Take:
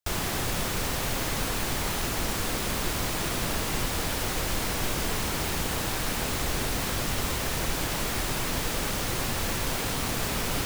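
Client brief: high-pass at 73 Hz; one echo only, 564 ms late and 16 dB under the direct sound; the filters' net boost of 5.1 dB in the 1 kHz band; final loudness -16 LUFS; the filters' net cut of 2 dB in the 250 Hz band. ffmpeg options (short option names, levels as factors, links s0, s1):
-af "highpass=73,equalizer=f=250:t=o:g=-3,equalizer=f=1000:t=o:g=6.5,aecho=1:1:564:0.158,volume=3.76"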